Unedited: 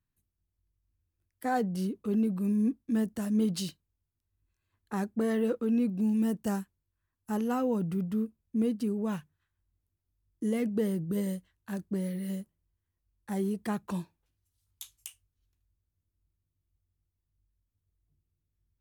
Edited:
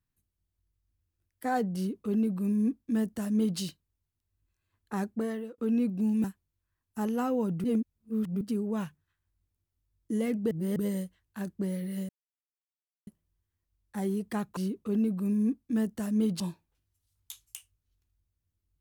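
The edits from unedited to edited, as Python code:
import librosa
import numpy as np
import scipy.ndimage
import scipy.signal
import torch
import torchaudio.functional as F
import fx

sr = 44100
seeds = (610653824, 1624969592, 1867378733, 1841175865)

y = fx.edit(x, sr, fx.duplicate(start_s=1.76, length_s=1.83, to_s=13.91),
    fx.fade_out_span(start_s=5.1, length_s=0.48),
    fx.cut(start_s=6.24, length_s=0.32),
    fx.reverse_span(start_s=7.96, length_s=0.77),
    fx.reverse_span(start_s=10.83, length_s=0.25),
    fx.insert_silence(at_s=12.41, length_s=0.98), tone=tone)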